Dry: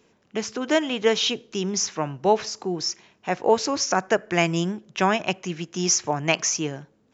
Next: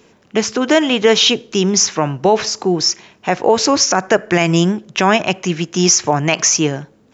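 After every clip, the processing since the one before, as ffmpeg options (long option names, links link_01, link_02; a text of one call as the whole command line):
ffmpeg -i in.wav -af "alimiter=level_in=12.5dB:limit=-1dB:release=50:level=0:latency=1,volume=-1dB" out.wav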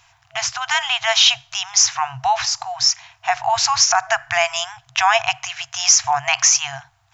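ffmpeg -i in.wav -af "afftfilt=real='re*(1-between(b*sr/4096,130,660))':imag='im*(1-between(b*sr/4096,130,660))':win_size=4096:overlap=0.75" out.wav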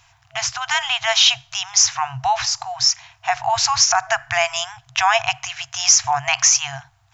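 ffmpeg -i in.wav -af "bass=frequency=250:gain=5,treble=frequency=4000:gain=1,volume=-1dB" out.wav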